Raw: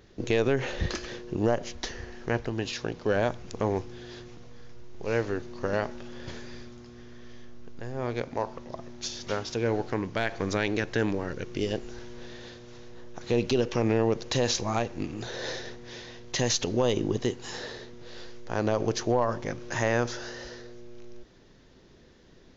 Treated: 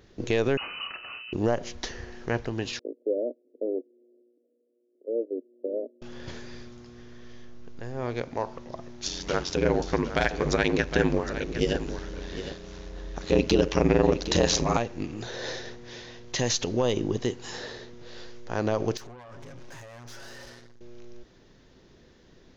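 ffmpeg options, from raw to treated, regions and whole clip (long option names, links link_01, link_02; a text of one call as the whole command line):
ffmpeg -i in.wav -filter_complex "[0:a]asettb=1/sr,asplit=3[link_01][link_02][link_03];[link_01]atrim=end=0.574[link_04];[link_02]atrim=start=0.57:end=1.33,asetpts=PTS-STARTPTS,afade=type=in:duration=0.004:curve=qsin,afade=type=out:start_time=0.756:duration=0.004:curve=qsin,bandreject=frequency=690:width=5.5,acrossover=split=93|400[link_05][link_06][link_07];[link_05]acompressor=threshold=-42dB:ratio=4[link_08];[link_06]acompressor=threshold=-40dB:ratio=4[link_09];[link_07]acompressor=threshold=-36dB:ratio=4[link_10];[link_08][link_09][link_10]amix=inputs=3:normalize=0,lowpass=frequency=2600:width_type=q:width=0.5098,lowpass=frequency=2600:width_type=q:width=0.6013,lowpass=frequency=2600:width_type=q:width=0.9,lowpass=frequency=2600:width_type=q:width=2.563,afreqshift=-3000[link_11];[link_03]atrim=start=1.326[link_12];[link_04][link_11]acrossfade=duration=0.004:curve1=hsin:curve2=qsin[link_13];[link_13][link_12]acrossfade=duration=0.004:curve1=qsin:curve2=hsin,asettb=1/sr,asplit=3[link_14][link_15][link_16];[link_14]atrim=end=2.794[link_17];[link_15]atrim=start=2.79:end=6.02,asetpts=PTS-STARTPTS,afade=type=in:duration=0.004:curve=qsin,afade=type=out:start_time=3.226:duration=0.004:curve=qsin,agate=range=-15dB:threshold=-32dB:ratio=16:release=100:detection=peak,asuperpass=centerf=390:order=12:qfactor=1.1[link_18];[link_16]atrim=start=6.016[link_19];[link_17][link_18]acrossfade=duration=0.004:curve1=hsin:curve2=qsin[link_20];[link_20][link_19]acrossfade=duration=0.004:curve1=qsin:curve2=hsin,asettb=1/sr,asplit=3[link_21][link_22][link_23];[link_21]atrim=end=9.064[link_24];[link_22]atrim=start=9.06:end=14.77,asetpts=PTS-STARTPTS,afade=type=in:duration=0.004:curve=qsin,afade=type=out:start_time=5.706:duration=0.004:curve=qsin,acontrast=68,aeval=exprs='val(0)*sin(2*PI*45*n/s)':channel_layout=same,aecho=1:1:760:0.266,atrim=end_sample=251811[link_25];[link_23]atrim=start=14.766[link_26];[link_24][link_25]acrossfade=duration=0.004:curve1=hsin:curve2=qsin[link_27];[link_27][link_26]acrossfade=duration=0.004:curve1=qsin:curve2=hsin,asettb=1/sr,asplit=3[link_28][link_29][link_30];[link_28]atrim=end=18.974[link_31];[link_29]atrim=start=18.97:end=20.81,asetpts=PTS-STARTPTS,afade=type=in:duration=0.004:curve=qsin,afade=type=out:start_time=1.836:duration=0.004:curve=qsin,aecho=1:1:7.3:0.68,atrim=end_sample=81144,acompressor=threshold=-33dB:ratio=16:attack=3.2:release=140:knee=1:detection=peak,aeval=exprs='(tanh(126*val(0)+0.5)-tanh(0.5))/126':channel_layout=same[link_32];[link_30]atrim=start=20.806[link_33];[link_31][link_32]acrossfade=duration=0.004:curve1=hsin:curve2=qsin[link_34];[link_34][link_33]acrossfade=duration=0.004:curve1=qsin:curve2=hsin" out.wav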